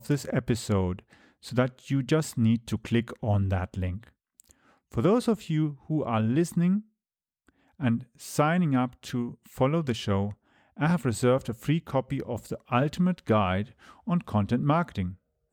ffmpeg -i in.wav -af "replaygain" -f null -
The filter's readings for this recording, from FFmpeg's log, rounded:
track_gain = +8.0 dB
track_peak = 0.233